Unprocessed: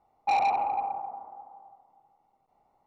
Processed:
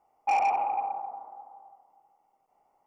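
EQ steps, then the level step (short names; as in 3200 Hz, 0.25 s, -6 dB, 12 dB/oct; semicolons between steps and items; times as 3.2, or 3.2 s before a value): Butterworth band-stop 3900 Hz, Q 3.4; tone controls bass -10 dB, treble +3 dB; 0.0 dB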